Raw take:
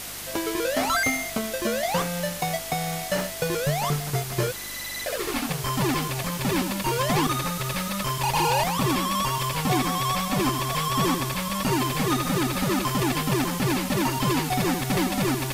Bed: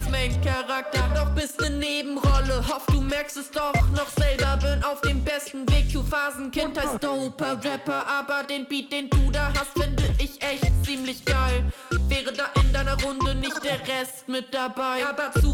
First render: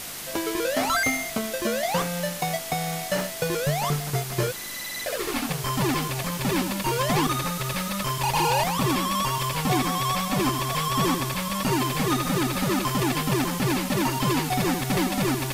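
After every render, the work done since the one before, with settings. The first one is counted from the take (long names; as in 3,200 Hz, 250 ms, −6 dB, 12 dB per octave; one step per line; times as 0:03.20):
hum removal 50 Hz, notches 2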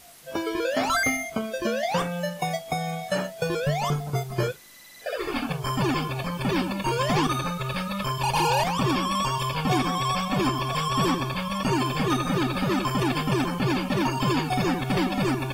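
noise reduction from a noise print 15 dB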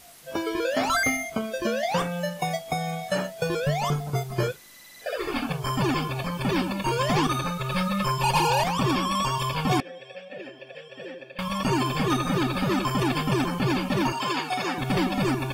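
0:07.71–0:08.39: comb filter 5.6 ms, depth 79%
0:09.80–0:11.39: formant filter e
0:14.12–0:14.78: meter weighting curve A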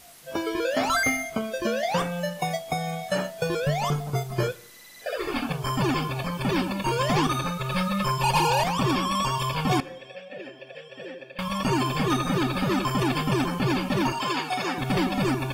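four-comb reverb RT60 0.84 s, combs from 26 ms, DRR 20 dB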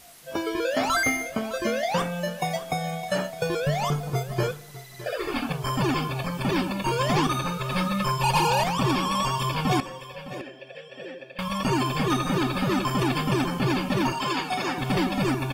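single-tap delay 611 ms −15.5 dB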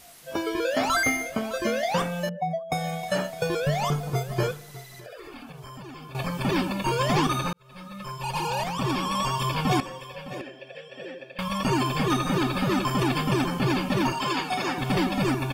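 0:02.29–0:02.72: expanding power law on the bin magnitudes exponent 2.4
0:04.84–0:06.15: downward compressor, threshold −40 dBFS
0:07.53–0:09.48: fade in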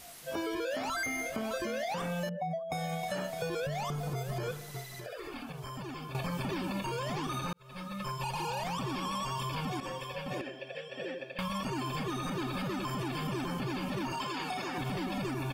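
brickwall limiter −24 dBFS, peak gain reduction 11.5 dB
downward compressor, threshold −32 dBFS, peak gain reduction 5 dB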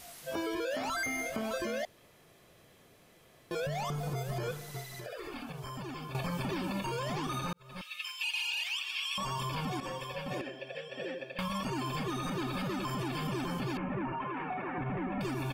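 0:01.85–0:03.51: fill with room tone
0:07.81–0:09.18: high-pass with resonance 2,700 Hz, resonance Q 4.4
0:13.77–0:15.21: Butterworth low-pass 2,300 Hz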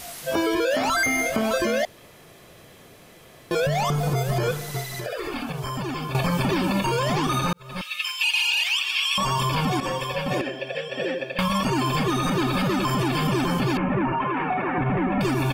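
level +12 dB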